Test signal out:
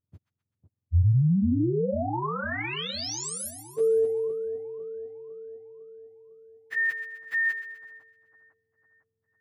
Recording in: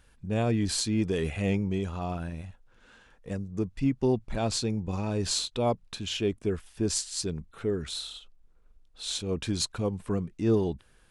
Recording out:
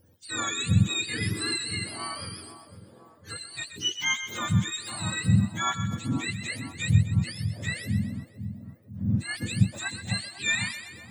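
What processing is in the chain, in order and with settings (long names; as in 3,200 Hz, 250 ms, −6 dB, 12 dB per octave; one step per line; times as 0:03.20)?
frequency axis turned over on the octave scale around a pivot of 900 Hz
echo with a time of its own for lows and highs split 1,100 Hz, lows 503 ms, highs 127 ms, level −10 dB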